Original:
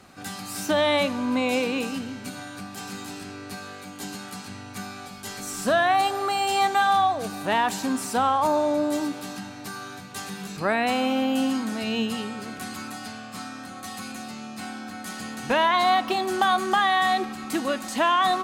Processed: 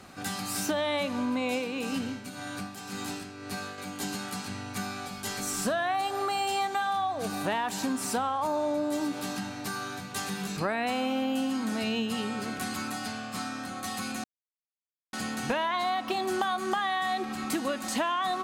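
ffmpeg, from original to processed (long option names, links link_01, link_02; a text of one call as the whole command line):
ffmpeg -i in.wav -filter_complex "[0:a]asettb=1/sr,asplit=3[link_01][link_02][link_03];[link_01]atrim=end=1.494[link_04];[link_02]atrim=start=1.49:end=3.78,asetpts=PTS-STARTPTS,afade=type=in:duration=0.004:curve=qsin,afade=type=out:start_time=2.286:duration=0.004:curve=qsin,tremolo=f=1.9:d=0.58[link_05];[link_03]atrim=start=3.776[link_06];[link_04][link_05]acrossfade=duration=0.004:curve1=hsin:curve2=qsin[link_07];[link_07][link_06]acrossfade=duration=0.004:curve1=qsin:curve2=hsin,asplit=3[link_08][link_09][link_10];[link_08]atrim=end=14.24,asetpts=PTS-STARTPTS,afade=type=out:start_time=14.236:duration=0.004:curve=hsin[link_11];[link_09]atrim=start=14.24:end=15.13,asetpts=PTS-STARTPTS,volume=0[link_12];[link_10]atrim=start=15.13,asetpts=PTS-STARTPTS,afade=type=in:duration=0.004:curve=hsin[link_13];[link_11][link_12][link_13]concat=n=3:v=0:a=1,acompressor=threshold=-28dB:ratio=6,volume=1.5dB" out.wav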